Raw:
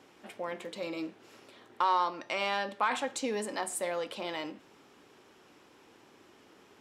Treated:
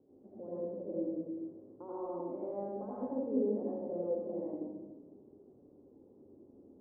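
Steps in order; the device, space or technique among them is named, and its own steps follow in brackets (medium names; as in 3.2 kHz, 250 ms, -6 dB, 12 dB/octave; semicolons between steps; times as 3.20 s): next room (low-pass 500 Hz 24 dB/octave; reverberation RT60 1.2 s, pre-delay 76 ms, DRR -7.5 dB); trim -6 dB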